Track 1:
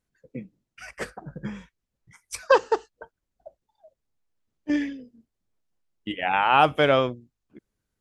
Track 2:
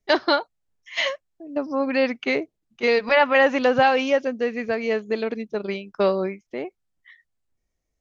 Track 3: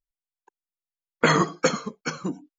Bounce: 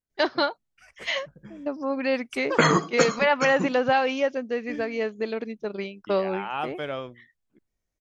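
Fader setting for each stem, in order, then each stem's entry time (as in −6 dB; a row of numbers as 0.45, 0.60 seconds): −12.5, −4.0, 0.0 decibels; 0.00, 0.10, 1.35 seconds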